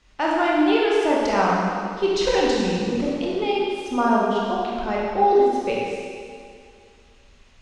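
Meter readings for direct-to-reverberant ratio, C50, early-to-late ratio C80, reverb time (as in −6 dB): −5.0 dB, −2.5 dB, −0.5 dB, 2.2 s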